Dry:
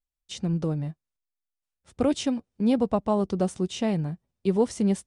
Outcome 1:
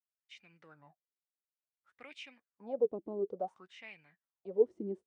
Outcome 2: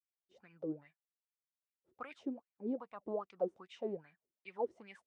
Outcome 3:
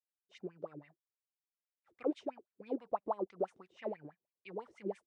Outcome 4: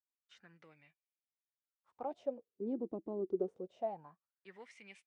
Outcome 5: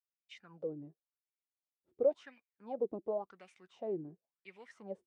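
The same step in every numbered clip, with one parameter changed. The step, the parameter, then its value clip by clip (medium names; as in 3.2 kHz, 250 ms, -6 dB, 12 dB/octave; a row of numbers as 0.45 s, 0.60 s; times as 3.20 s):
wah-wah, rate: 0.57 Hz, 2.5 Hz, 6.1 Hz, 0.25 Hz, 0.93 Hz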